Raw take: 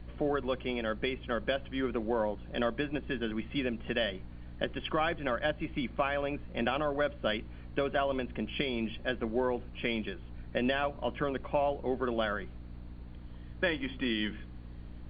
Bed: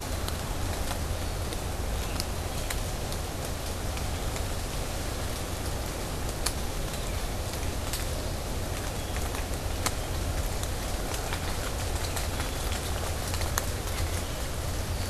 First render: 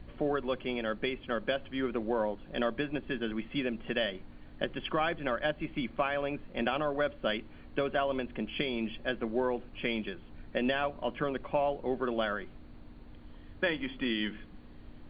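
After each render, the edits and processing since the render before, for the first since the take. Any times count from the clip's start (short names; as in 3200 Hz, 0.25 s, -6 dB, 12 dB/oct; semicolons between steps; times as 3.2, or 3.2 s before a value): de-hum 60 Hz, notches 3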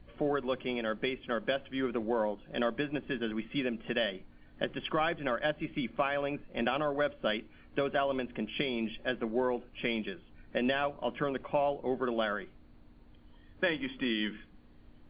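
noise print and reduce 7 dB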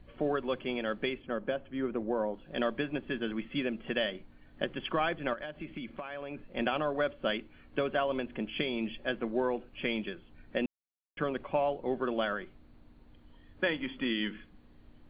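1.22–2.34 LPF 1100 Hz 6 dB/oct; 5.33–6.43 compressor 12:1, threshold -35 dBFS; 10.66–11.17 mute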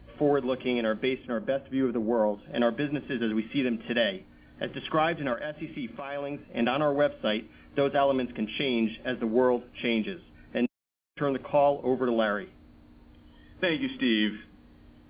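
HPF 41 Hz; harmonic-percussive split harmonic +8 dB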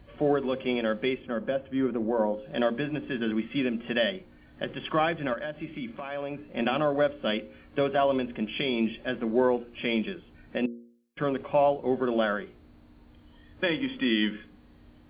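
de-hum 59.12 Hz, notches 9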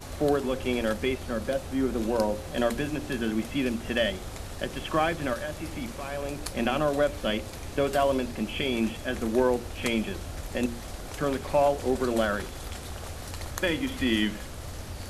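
add bed -7 dB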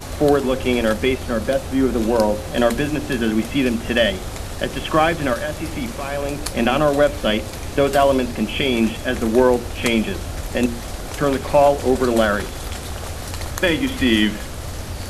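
gain +9 dB; limiter -3 dBFS, peak gain reduction 2.5 dB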